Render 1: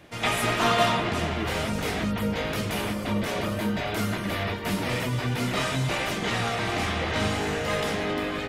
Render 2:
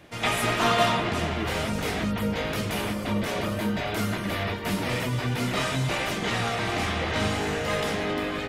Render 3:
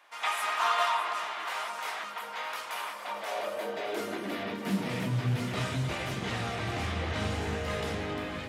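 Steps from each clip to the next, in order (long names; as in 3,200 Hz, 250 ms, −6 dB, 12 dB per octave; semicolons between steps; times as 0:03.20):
no processing that can be heard
high-pass filter sweep 1,000 Hz → 67 Hz, 0:02.92–0:05.91; delay that swaps between a low-pass and a high-pass 305 ms, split 1,500 Hz, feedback 59%, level −9 dB; highs frequency-modulated by the lows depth 0.14 ms; level −7.5 dB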